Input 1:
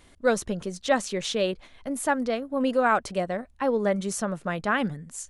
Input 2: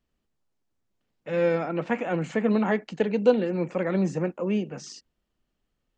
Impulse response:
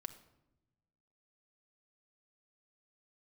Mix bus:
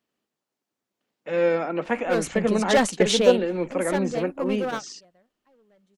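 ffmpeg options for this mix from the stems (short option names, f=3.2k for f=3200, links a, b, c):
-filter_complex "[0:a]volume=21dB,asoftclip=hard,volume=-21dB,dynaudnorm=f=240:g=7:m=10dB,adelay=1850,volume=-0.5dB,afade=t=out:st=3.03:d=0.41:silence=0.237137,afade=t=out:st=4.98:d=0.36:silence=0.473151[a];[1:a]highpass=240,volume=2.5dB,asplit=2[b][c];[c]apad=whole_len=315031[d];[a][d]sidechaingate=range=-26dB:threshold=-35dB:ratio=16:detection=peak[e];[e][b]amix=inputs=2:normalize=0"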